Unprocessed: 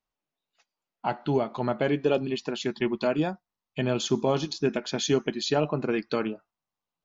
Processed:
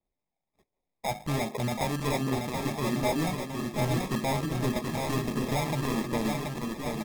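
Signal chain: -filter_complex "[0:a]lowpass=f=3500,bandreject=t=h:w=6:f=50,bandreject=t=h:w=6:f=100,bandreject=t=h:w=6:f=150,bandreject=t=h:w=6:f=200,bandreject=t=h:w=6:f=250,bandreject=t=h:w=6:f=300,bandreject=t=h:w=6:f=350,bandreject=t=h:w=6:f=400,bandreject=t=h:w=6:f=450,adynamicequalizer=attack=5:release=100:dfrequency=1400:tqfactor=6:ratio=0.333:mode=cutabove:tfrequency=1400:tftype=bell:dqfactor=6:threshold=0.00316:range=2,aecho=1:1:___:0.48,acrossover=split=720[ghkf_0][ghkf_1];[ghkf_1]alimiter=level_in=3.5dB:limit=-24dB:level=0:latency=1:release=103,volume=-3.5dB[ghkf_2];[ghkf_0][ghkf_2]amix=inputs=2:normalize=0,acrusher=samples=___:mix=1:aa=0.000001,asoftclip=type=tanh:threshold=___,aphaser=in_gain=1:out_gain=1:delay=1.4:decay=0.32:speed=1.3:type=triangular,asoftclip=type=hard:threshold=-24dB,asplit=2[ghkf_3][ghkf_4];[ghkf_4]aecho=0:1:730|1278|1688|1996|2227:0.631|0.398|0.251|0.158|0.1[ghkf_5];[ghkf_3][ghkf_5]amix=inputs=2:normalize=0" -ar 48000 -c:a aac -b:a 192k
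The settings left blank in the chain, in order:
1.2, 30, -21.5dB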